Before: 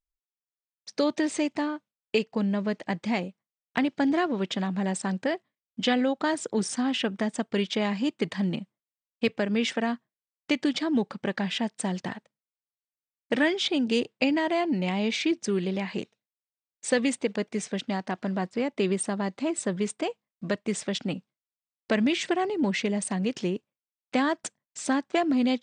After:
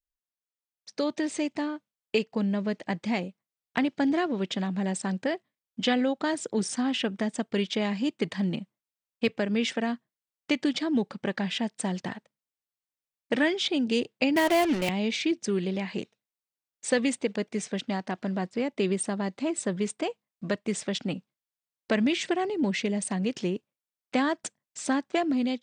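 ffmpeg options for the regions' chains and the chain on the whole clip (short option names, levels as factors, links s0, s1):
-filter_complex "[0:a]asettb=1/sr,asplit=3[s0][s1][s2];[s0]atrim=end=14.364[s3];[s1]atrim=start=14.36:end=14.89,asetpts=PTS-STARTPTS,afade=t=in:d=0.004:c=qsin,afade=t=out:st=0.526:d=0.004:c=qsin,highpass=290,acontrast=39,acrusher=bits=4:mix=0:aa=0.5[s4];[s2]atrim=start=14.886[s5];[s3][s4]acrossfade=d=0.004:c1=hsin:c2=qsin[s6];[s6][s5]acrossfade=d=0.004:c1=qsin:c2=hsin,adynamicequalizer=threshold=0.00891:dfrequency=1100:dqfactor=1.1:tfrequency=1100:tqfactor=1.1:attack=5:release=100:ratio=0.375:range=2.5:mode=cutabove:tftype=bell,dynaudnorm=f=870:g=3:m=1.58,volume=0.596"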